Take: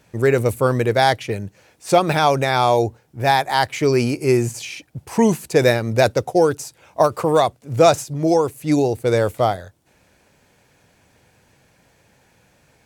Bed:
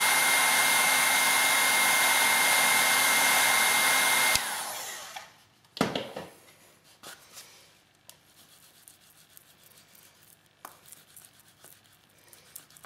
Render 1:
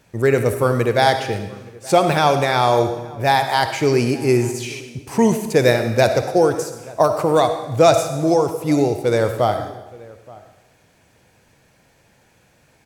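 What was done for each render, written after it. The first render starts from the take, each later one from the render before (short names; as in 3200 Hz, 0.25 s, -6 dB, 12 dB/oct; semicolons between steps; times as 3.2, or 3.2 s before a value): outdoor echo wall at 150 m, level -22 dB; digital reverb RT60 1 s, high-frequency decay 1×, pre-delay 20 ms, DRR 7.5 dB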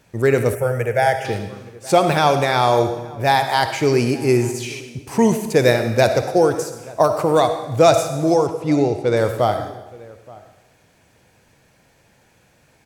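0.55–1.25 fixed phaser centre 1100 Hz, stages 6; 8.47–9.17 air absorption 72 m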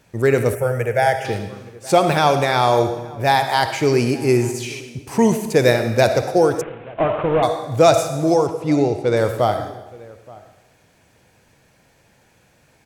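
6.61–7.43 CVSD 16 kbps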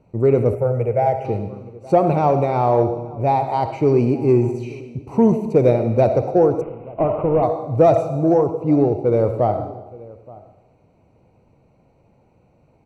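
running mean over 26 samples; in parallel at -10 dB: soft clip -14 dBFS, distortion -13 dB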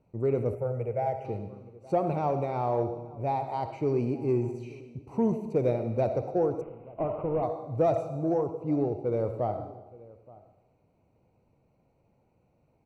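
gain -11.5 dB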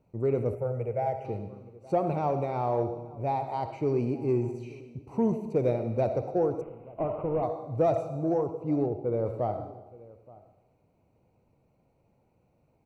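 8.86–9.26 high shelf 2600 Hz -10.5 dB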